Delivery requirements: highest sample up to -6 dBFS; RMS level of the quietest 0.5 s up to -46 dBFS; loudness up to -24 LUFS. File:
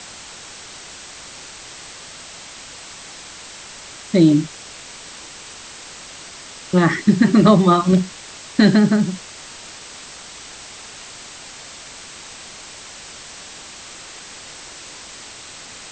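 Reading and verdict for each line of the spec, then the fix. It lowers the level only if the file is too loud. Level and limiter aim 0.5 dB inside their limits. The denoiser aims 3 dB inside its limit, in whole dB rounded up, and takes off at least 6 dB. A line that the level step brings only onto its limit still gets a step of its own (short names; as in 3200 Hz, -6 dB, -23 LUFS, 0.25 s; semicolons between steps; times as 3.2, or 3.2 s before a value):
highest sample -2.0 dBFS: fail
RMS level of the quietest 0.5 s -38 dBFS: fail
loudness -16.0 LUFS: fail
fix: gain -8.5 dB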